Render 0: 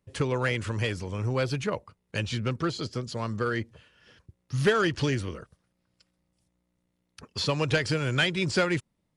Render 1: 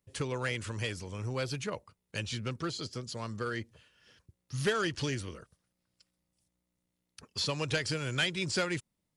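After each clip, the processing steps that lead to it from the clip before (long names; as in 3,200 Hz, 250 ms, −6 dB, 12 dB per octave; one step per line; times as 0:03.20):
high-shelf EQ 3,800 Hz +9.5 dB
level −7.5 dB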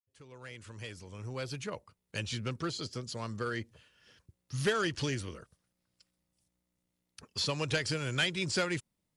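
fade in at the beginning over 2.28 s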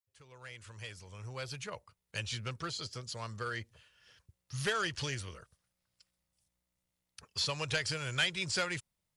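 parametric band 270 Hz −11.5 dB 1.4 octaves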